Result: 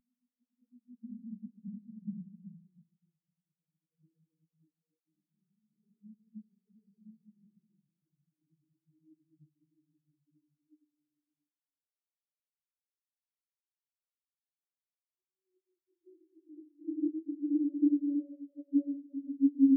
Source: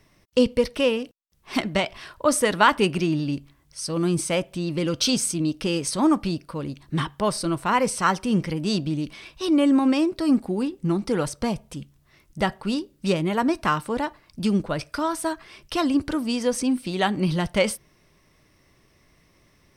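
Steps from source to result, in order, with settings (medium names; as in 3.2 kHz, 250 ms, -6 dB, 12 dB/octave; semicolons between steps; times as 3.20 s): Paulstretch 13×, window 0.25 s, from 8.20 s; spectral contrast expander 4:1; trim -7.5 dB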